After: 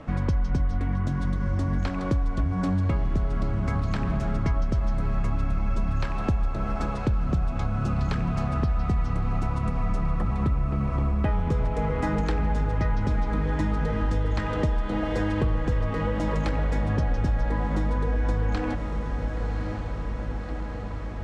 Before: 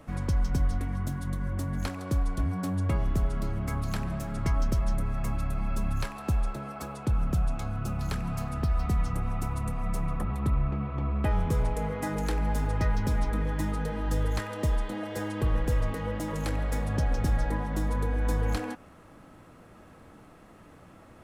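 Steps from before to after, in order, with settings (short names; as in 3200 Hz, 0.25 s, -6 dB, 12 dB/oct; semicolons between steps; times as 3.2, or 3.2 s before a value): air absorption 130 m; diffused feedback echo 1.117 s, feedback 70%, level -12 dB; compressor 4:1, threshold -30 dBFS, peak gain reduction 9 dB; gain +8.5 dB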